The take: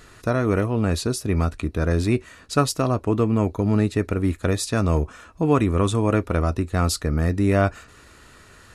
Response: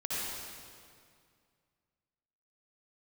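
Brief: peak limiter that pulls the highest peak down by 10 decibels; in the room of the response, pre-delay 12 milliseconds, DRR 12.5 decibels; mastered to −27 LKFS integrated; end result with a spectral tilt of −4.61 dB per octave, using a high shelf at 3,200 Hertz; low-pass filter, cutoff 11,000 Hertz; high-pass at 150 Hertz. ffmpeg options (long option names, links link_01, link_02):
-filter_complex "[0:a]highpass=150,lowpass=11000,highshelf=frequency=3200:gain=7.5,alimiter=limit=-14.5dB:level=0:latency=1,asplit=2[link_01][link_02];[1:a]atrim=start_sample=2205,adelay=12[link_03];[link_02][link_03]afir=irnorm=-1:irlink=0,volume=-18dB[link_04];[link_01][link_04]amix=inputs=2:normalize=0,volume=-0.5dB"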